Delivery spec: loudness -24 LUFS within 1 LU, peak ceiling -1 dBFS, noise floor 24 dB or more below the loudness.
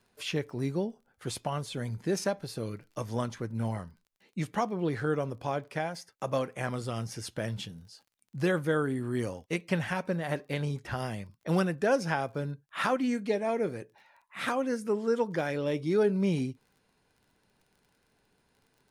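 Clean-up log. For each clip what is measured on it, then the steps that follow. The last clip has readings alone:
tick rate 31 per s; loudness -32.0 LUFS; peak level -13.5 dBFS; loudness target -24.0 LUFS
-> de-click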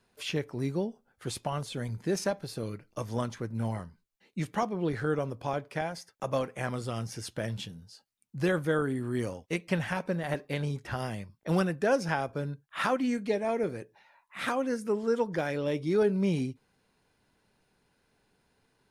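tick rate 0.053 per s; loudness -32.0 LUFS; peak level -13.5 dBFS; loudness target -24.0 LUFS
-> trim +8 dB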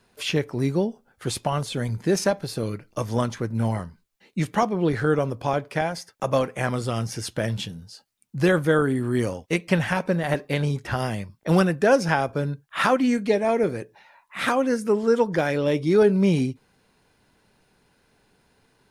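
loudness -24.0 LUFS; peak level -5.5 dBFS; noise floor -65 dBFS

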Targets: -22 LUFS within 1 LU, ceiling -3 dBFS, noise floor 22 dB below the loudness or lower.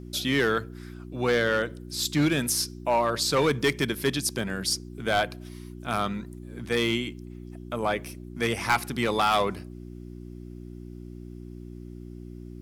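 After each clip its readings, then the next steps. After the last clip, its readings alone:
clipped samples 0.9%; clipping level -16.5 dBFS; hum 60 Hz; highest harmonic 360 Hz; hum level -38 dBFS; loudness -26.5 LUFS; peak level -16.5 dBFS; loudness target -22.0 LUFS
-> clip repair -16.5 dBFS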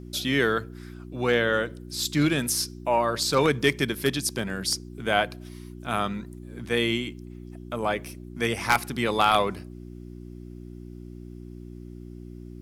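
clipped samples 0.0%; hum 60 Hz; highest harmonic 360 Hz; hum level -38 dBFS
-> de-hum 60 Hz, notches 6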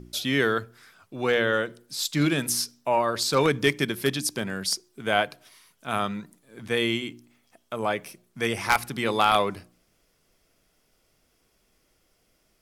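hum not found; loudness -25.5 LUFS; peak level -7.0 dBFS; loudness target -22.0 LUFS
-> trim +3.5 dB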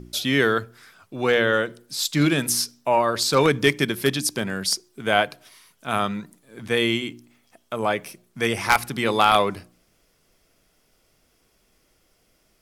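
loudness -22.0 LUFS; peak level -3.5 dBFS; noise floor -65 dBFS

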